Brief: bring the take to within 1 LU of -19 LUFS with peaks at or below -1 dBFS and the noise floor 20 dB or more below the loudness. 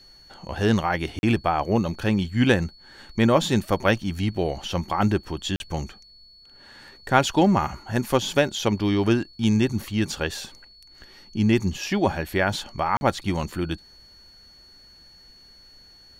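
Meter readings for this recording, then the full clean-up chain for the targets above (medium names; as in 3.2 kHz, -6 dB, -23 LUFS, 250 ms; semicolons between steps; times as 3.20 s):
dropouts 3; longest dropout 41 ms; steady tone 4.4 kHz; tone level -49 dBFS; loudness -24.0 LUFS; peak level -3.0 dBFS; loudness target -19.0 LUFS
-> interpolate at 1.19/5.56/12.97 s, 41 ms; band-stop 4.4 kHz, Q 30; trim +5 dB; peak limiter -1 dBFS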